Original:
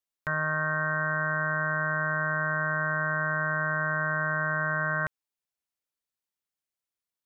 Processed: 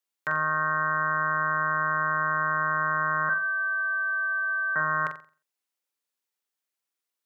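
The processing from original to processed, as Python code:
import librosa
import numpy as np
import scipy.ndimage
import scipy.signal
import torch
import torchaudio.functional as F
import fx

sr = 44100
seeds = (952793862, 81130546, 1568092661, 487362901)

y = fx.sine_speech(x, sr, at=(3.29, 4.76))
y = scipy.signal.sosfilt(scipy.signal.butter(2, 270.0, 'highpass', fs=sr, output='sos'), y)
y = fx.notch(y, sr, hz=650.0, q=12.0)
y = fx.room_flutter(y, sr, wall_m=7.6, rt60_s=0.38)
y = y * 10.0 ** (3.0 / 20.0)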